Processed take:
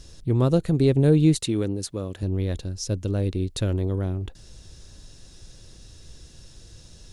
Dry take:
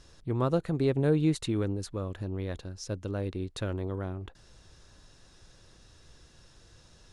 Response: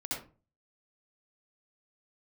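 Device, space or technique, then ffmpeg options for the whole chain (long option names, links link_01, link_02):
smiley-face EQ: -filter_complex "[0:a]asettb=1/sr,asplit=3[link_01][link_02][link_03];[link_01]atrim=end=1.394[link_04];[link_02]atrim=start=1.39:end=2.23,asetpts=PTS-STARTPTS,afade=type=in:duration=0.004:curve=qsin,afade=type=out:start_time=0.836:duration=0.004:curve=qsin,highpass=frequency=220:poles=1[link_05];[link_03]atrim=start=2.226[link_06];[link_04][link_05]acrossfade=duration=0.004:curve1=hsin:curve2=qsin[link_07];[link_07][link_06]acrossfade=duration=0.004:curve1=qsin:curve2=hsin,lowshelf=frequency=110:gain=4,equalizer=frequency=1200:width_type=o:width=1.9:gain=-9,highshelf=frequency=5200:gain=4.5,volume=8dB"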